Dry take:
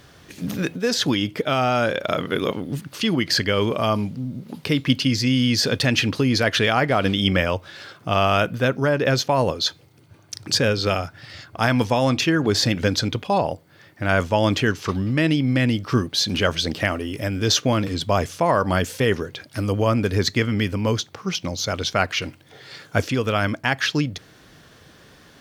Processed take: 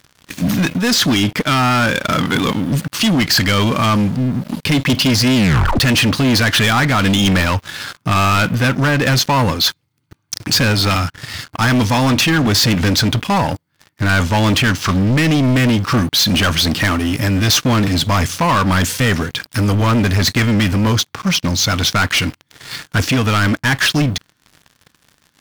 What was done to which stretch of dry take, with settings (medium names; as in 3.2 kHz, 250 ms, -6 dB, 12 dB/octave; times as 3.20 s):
5.35 s: tape stop 0.44 s
whole clip: high-order bell 510 Hz -9.5 dB 1.3 oct; waveshaping leveller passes 5; trim -4.5 dB